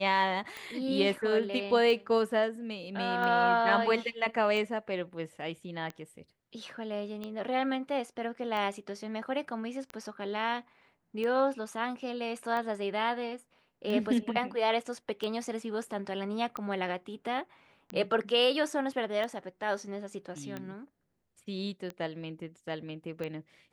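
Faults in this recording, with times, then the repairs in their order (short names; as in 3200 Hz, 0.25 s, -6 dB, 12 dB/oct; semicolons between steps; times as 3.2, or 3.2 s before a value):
tick 45 rpm -24 dBFS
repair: de-click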